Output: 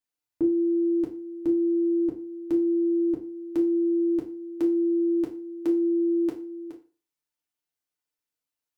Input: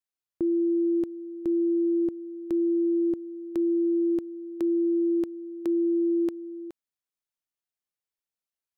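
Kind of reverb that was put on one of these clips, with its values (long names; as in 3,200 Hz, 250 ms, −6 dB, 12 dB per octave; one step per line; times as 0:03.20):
feedback delay network reverb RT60 0.37 s, low-frequency decay 0.9×, high-frequency decay 0.85×, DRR −2.5 dB
level −1.5 dB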